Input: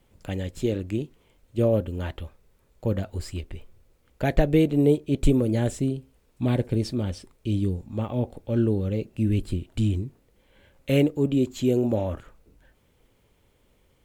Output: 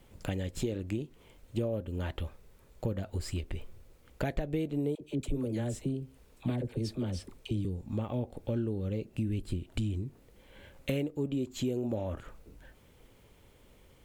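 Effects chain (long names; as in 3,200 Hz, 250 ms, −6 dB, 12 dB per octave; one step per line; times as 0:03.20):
downward compressor 5 to 1, threshold −35 dBFS, peak gain reduction 20 dB
0:04.95–0:07.65: all-pass dispersion lows, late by 55 ms, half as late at 610 Hz
level +4 dB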